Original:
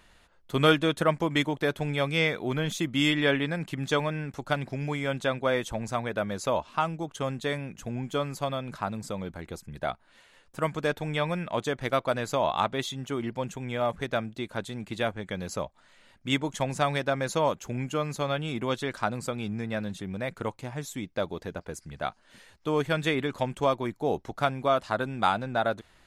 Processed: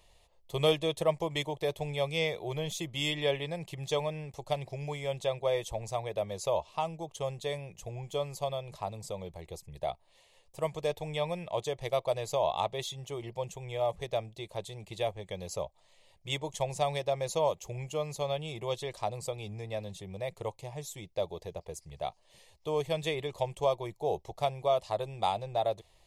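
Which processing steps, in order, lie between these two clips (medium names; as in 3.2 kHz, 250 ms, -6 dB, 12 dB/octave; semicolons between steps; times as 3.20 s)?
static phaser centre 610 Hz, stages 4; trim -1.5 dB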